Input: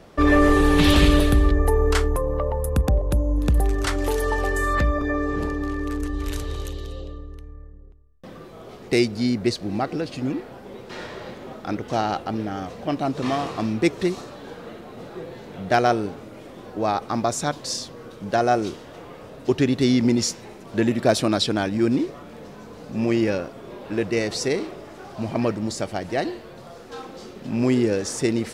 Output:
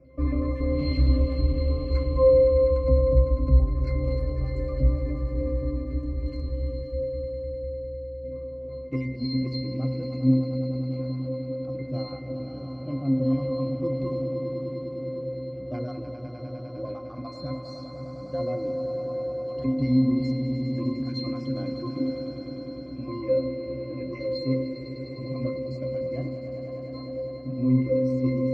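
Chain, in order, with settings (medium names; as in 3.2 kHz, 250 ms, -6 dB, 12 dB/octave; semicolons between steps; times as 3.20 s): random holes in the spectrogram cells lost 32%; fifteen-band graphic EQ 400 Hz +5 dB, 1 kHz -7 dB, 4 kHz +3 dB; echo with a slow build-up 101 ms, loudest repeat 5, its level -12 dB; in parallel at -2 dB: peak limiter -11.5 dBFS, peak gain reduction 7.5 dB; on the sum: saturation -7 dBFS, distortion -19 dB; pitch-class resonator C, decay 0.61 s; on a send at -10 dB: reverberation RT60 0.45 s, pre-delay 3 ms; on the sum: trim +9 dB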